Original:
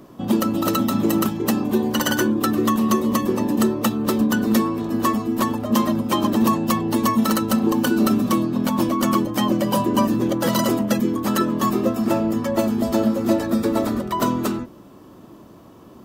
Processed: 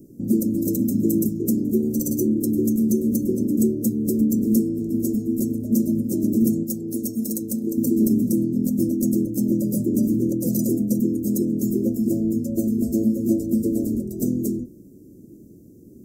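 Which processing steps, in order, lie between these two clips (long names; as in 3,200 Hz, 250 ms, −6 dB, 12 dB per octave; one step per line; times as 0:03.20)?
inverse Chebyshev band-stop filter 980–2,900 Hz, stop band 60 dB
0:06.63–0:07.78: low-shelf EQ 320 Hz −10 dB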